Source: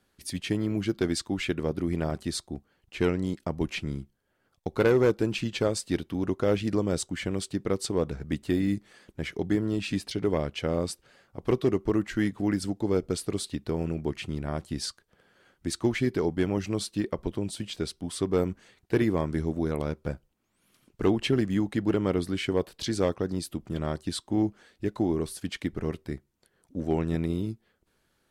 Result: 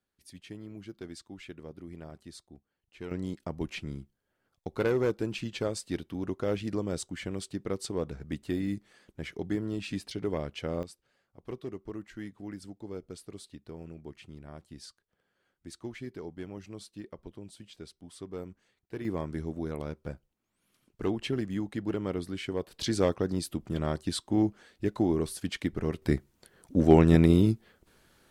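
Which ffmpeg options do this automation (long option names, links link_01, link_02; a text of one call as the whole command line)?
ffmpeg -i in.wav -af "asetnsamples=nb_out_samples=441:pad=0,asendcmd='3.11 volume volume -5.5dB;10.83 volume volume -14.5dB;19.05 volume volume -6.5dB;22.71 volume volume 0dB;26.02 volume volume 8.5dB',volume=-16dB" out.wav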